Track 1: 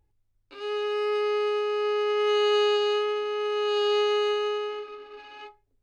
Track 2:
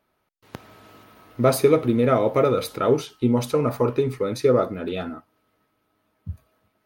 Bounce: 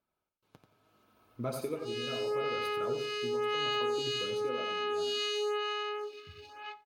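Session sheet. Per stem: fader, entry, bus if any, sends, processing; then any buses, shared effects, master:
+1.0 dB, 1.25 s, no send, echo send -24 dB, HPF 550 Hz 6 dB/oct; high shelf 4000 Hz +9.5 dB; photocell phaser 0.95 Hz
-11.5 dB, 0.00 s, no send, echo send -7 dB, notch 1900 Hz, Q 6; tremolo 0.73 Hz, depth 56%; flange 0.71 Hz, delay 0.5 ms, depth 7.8 ms, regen -45%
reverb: off
echo: feedback echo 88 ms, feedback 26%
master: compressor 2:1, threshold -32 dBFS, peak gain reduction 5.5 dB

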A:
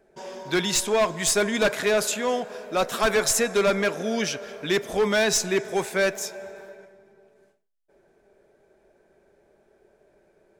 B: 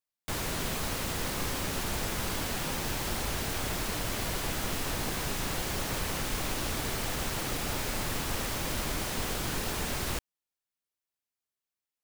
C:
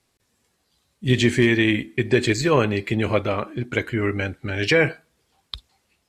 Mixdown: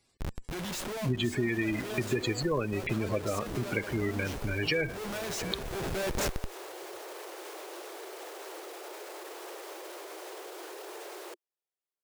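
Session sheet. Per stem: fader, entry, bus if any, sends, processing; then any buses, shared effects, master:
+1.5 dB, 0.00 s, no send, no echo send, Schmitt trigger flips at -29.5 dBFS; auto duck -11 dB, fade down 0.50 s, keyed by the third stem
-1.5 dB, 1.15 s, muted 2.87–3.46, no send, no echo send, steep high-pass 340 Hz 96 dB/oct; tilt shelf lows +7.5 dB, about 780 Hz; limiter -33 dBFS, peak gain reduction 8.5 dB
-2.5 dB, 0.00 s, no send, echo send -22.5 dB, spectral gate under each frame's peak -15 dB strong; high shelf 4000 Hz +10 dB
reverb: off
echo: feedback echo 0.702 s, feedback 23%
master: compressor 3:1, threshold -29 dBFS, peak gain reduction 10.5 dB

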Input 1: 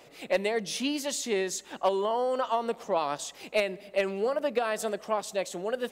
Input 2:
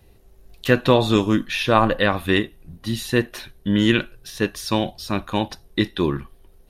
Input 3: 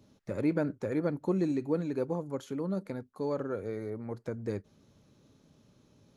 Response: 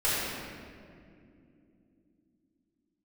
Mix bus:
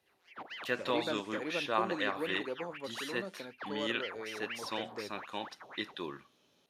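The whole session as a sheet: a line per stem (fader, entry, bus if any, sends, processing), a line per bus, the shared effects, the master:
-14.0 dB, 0.05 s, no send, arpeggiated vocoder bare fifth, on F3, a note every 0.394 s; ring modulator with a swept carrier 1400 Hz, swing 85%, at 4 Hz
-14.0 dB, 0.00 s, no send, dry
-3.0 dB, 0.50 s, no send, bell 3100 Hz +8.5 dB 0.7 oct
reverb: off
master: weighting filter A

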